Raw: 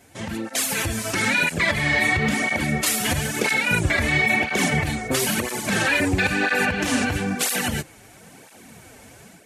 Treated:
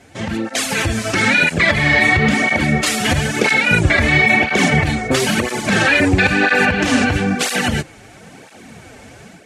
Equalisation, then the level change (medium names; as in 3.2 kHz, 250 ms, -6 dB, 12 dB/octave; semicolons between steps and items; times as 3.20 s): distance through air 63 m; band-stop 980 Hz, Q 16; +7.5 dB